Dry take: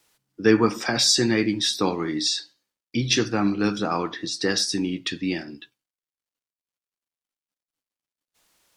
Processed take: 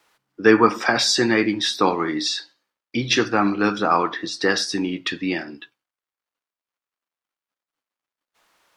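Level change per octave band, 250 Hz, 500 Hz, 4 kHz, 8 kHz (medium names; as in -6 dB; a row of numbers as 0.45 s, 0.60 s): +1.5 dB, +4.0 dB, +0.5 dB, -2.5 dB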